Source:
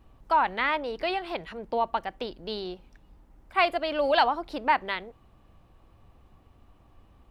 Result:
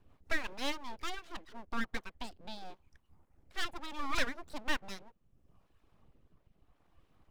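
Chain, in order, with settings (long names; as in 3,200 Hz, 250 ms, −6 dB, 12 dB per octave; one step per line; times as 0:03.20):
rotating-speaker cabinet horn 5.5 Hz, later 0.75 Hz, at 0:01.69
reverb reduction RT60 0.96 s
full-wave rectification
level −4.5 dB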